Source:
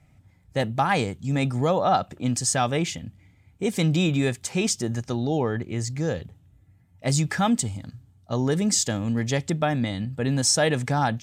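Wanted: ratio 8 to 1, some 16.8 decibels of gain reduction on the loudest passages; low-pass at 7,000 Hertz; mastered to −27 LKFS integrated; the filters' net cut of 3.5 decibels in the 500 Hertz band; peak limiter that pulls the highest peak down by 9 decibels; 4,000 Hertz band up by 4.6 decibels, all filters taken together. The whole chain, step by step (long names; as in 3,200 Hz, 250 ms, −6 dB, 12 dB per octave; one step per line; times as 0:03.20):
low-pass filter 7,000 Hz
parametric band 500 Hz −4.5 dB
parametric band 4,000 Hz +7 dB
downward compressor 8 to 1, threshold −36 dBFS
level +14.5 dB
brickwall limiter −17.5 dBFS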